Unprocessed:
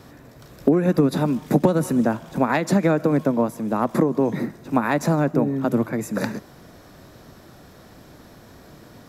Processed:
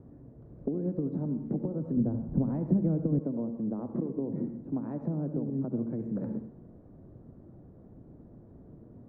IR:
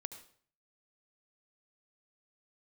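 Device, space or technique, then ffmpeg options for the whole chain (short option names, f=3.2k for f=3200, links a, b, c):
television next door: -filter_complex "[0:a]acompressor=threshold=-24dB:ratio=5,lowpass=380[a];[1:a]atrim=start_sample=2205[b];[a][b]afir=irnorm=-1:irlink=0,asettb=1/sr,asplit=3[c][d][e];[c]atrim=end=1.974[f];[d]atrim=start=1.97:end=3.19,asetpts=PTS-STARTPTS,afade=t=in:d=0.004:c=qsin,afade=t=out:st=1.216:d=0.004:c=qsin,aemphasis=mode=reproduction:type=bsi[g];[e]atrim=start=3.186[h];[f][g]acrossfade=d=0.004:c1=hsin:c2=qsin[i];[i][h]acrossfade=d=0.004:c1=qsin:c2=hsin"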